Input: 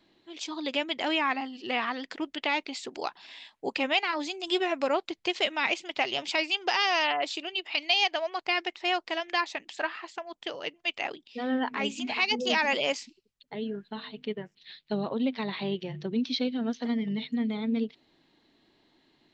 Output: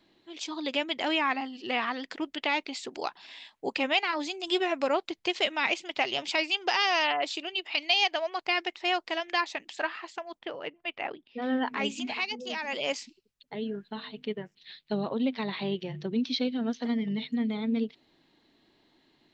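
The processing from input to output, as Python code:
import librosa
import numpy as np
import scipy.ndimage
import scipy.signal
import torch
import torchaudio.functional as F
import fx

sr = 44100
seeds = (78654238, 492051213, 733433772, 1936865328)

y = fx.lowpass(x, sr, hz=2200.0, slope=12, at=(10.38, 11.41), fade=0.02)
y = fx.edit(y, sr, fx.fade_down_up(start_s=12.0, length_s=1.0, db=-9.0, fade_s=0.34), tone=tone)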